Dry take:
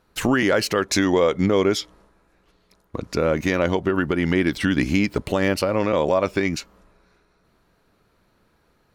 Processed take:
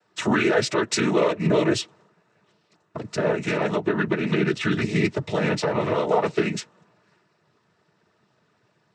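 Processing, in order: noise vocoder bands 12; notch comb 270 Hz

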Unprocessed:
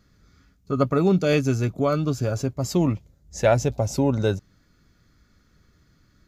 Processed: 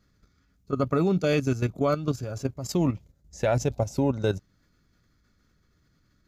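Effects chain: level quantiser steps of 11 dB

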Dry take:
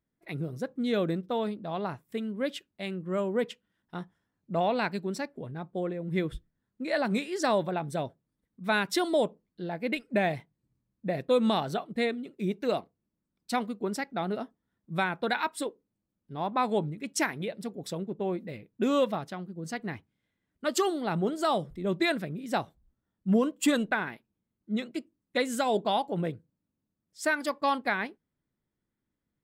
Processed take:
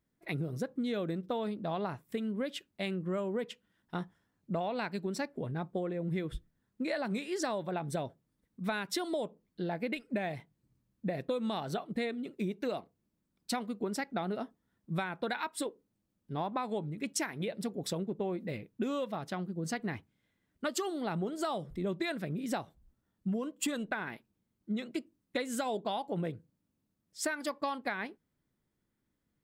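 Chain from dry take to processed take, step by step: compressor 10:1, threshold -34 dBFS, peak gain reduction 15 dB; gain +3 dB

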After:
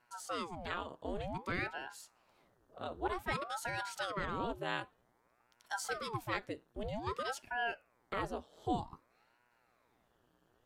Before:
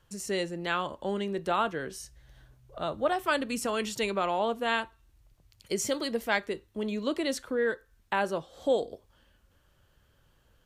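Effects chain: buzz 120 Hz, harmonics 14, -64 dBFS -4 dB/oct; resonant low shelf 120 Hz -13.5 dB, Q 1.5; ring modulator with a swept carrier 640 Hz, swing 90%, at 0.53 Hz; gain -7 dB

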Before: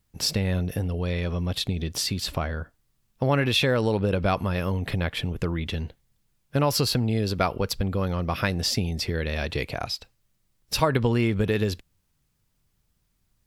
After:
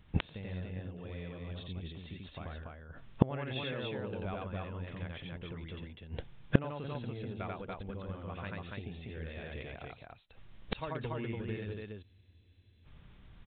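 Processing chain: on a send: loudspeakers at several distances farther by 30 m -1 dB, 98 m -2 dB; on the sum: flipped gate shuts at -24 dBFS, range -31 dB; downsampling 8000 Hz; spectral freeze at 12.06, 0.80 s; gain +12 dB

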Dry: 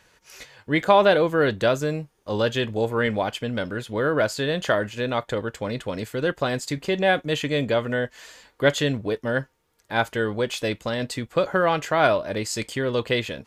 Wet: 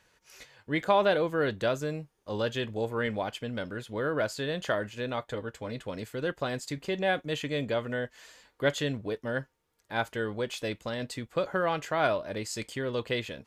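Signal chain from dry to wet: 5.16–5.84 notch comb 180 Hz; gain -7.5 dB

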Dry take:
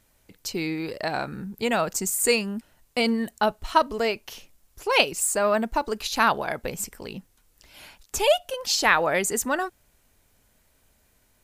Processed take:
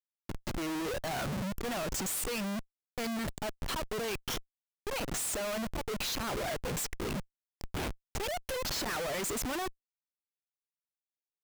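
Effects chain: reverb removal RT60 1.7 s; auto swell 0.233 s; Schmitt trigger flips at -43 dBFS; gain -2 dB

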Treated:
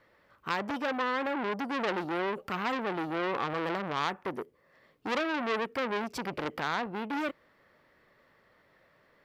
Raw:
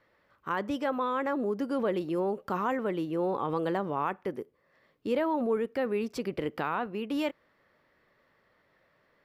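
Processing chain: core saturation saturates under 2200 Hz; gain +3.5 dB

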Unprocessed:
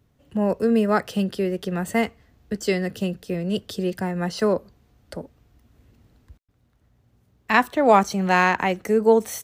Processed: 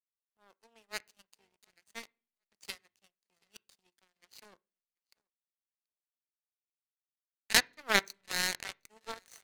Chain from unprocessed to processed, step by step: minimum comb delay 0.45 ms; weighting filter ITU-R 468; feedback echo 0.732 s, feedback 48%, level -12 dB; power-law curve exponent 3; on a send at -21 dB: reverb RT60 0.40 s, pre-delay 3 ms; on the sum: gain +1.5 dB

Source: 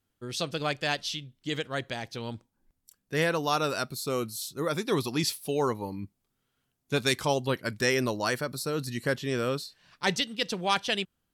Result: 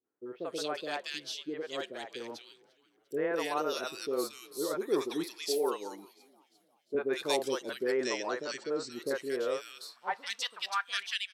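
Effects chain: 7.69–8.69 Chebyshev low-pass 8100 Hz, order 10; on a send: frequency-shifting echo 0.348 s, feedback 56%, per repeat -87 Hz, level -24 dB; on the sum: high-pass sweep 380 Hz -> 1800 Hz, 9.21–11.05; 5.23–6.95 Bessel high-pass 280 Hz, order 2; three bands offset in time lows, mids, highs 40/230 ms, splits 530/1900 Hz; gain -5.5 dB

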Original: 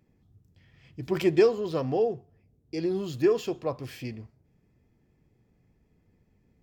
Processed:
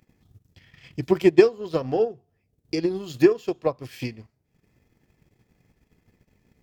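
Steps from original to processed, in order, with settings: transient shaper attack +9 dB, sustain -9 dB; mismatched tape noise reduction encoder only

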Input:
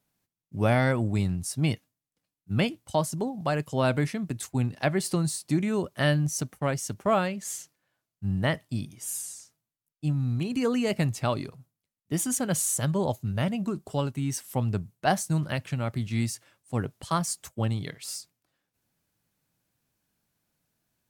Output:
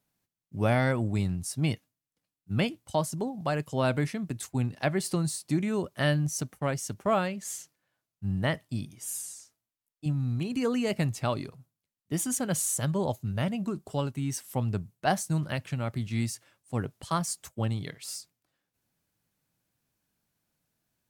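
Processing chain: 9.34–10.06 bell 150 Hz -13.5 dB 0.45 oct; gain -2 dB

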